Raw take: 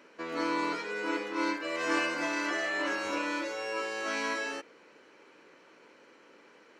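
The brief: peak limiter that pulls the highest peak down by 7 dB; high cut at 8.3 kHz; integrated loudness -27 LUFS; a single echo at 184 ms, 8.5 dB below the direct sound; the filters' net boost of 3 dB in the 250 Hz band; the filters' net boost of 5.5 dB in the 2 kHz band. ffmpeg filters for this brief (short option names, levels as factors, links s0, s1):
-af "lowpass=8300,equalizer=f=250:t=o:g=4,equalizer=f=2000:t=o:g=7,alimiter=limit=0.0944:level=0:latency=1,aecho=1:1:184:0.376,volume=1.19"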